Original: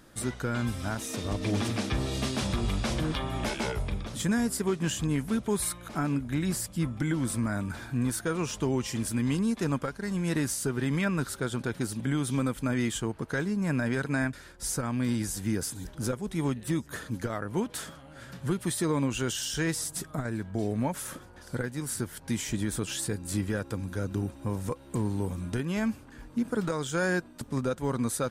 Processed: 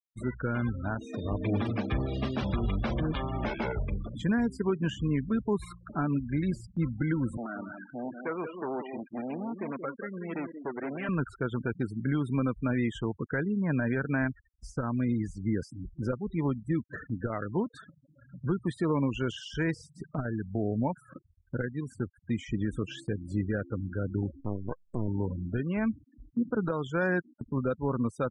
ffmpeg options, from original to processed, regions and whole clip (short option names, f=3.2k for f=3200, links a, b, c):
-filter_complex "[0:a]asettb=1/sr,asplit=3[a][b][c];[a]atrim=end=7.374[d];[b]atrim=start=7.37:end=11.09,asetpts=PTS-STARTPTS,afade=t=in:d=0.004:c=qsin,afade=t=out:st=3.716:d=0.004:c=qsin,aeval=exprs='0.0596*(abs(mod(val(0)/0.0596+3,4)-2)-1)':c=same,highpass=320,lowpass=2.6k,aecho=1:1:179:0.422,atrim=end_sample=164052[e];[c]atrim=start=11.086[f];[d][e]acrossfade=d=0.004:c1=hsin:c2=qsin[g];[g][f]acrossfade=d=0.004:c1=qsin:c2=hsin,asettb=1/sr,asplit=3[h][i][j];[h]atrim=end=24.404[k];[i]atrim=start=24.4:end=25.08,asetpts=PTS-STARTPTS,afade=t=in:d=0.004:c=qsin,afade=t=out:st=0.676:d=0.004:c=qsin,highshelf=f=2.3k:g=4.5,aeval=exprs='max(val(0),0)':c=same[l];[j]atrim=start=25.076[m];[k][l]acrossfade=d=0.004:c1=hsin:c2=qsin[n];[n][m]acrossfade=d=0.004:c1=qsin:c2=hsin,afftfilt=real='re*gte(hypot(re,im),0.0224)':imag='im*gte(hypot(re,im),0.0224)':win_size=1024:overlap=0.75,lowpass=2.7k,agate=range=-6dB:threshold=-45dB:ratio=16:detection=peak"